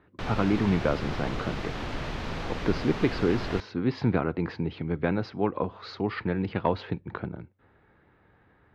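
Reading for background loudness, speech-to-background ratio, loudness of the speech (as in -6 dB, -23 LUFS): -35.0 LUFS, 5.5 dB, -29.5 LUFS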